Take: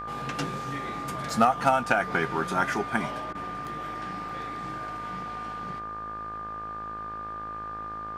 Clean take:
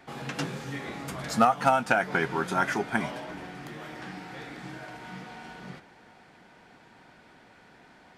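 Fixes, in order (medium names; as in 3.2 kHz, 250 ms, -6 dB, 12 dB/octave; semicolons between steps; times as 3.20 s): de-hum 53.8 Hz, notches 33; band-stop 1.2 kHz, Q 30; interpolate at 1.30/3.65/4.29 s, 2.4 ms; interpolate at 3.33 s, 18 ms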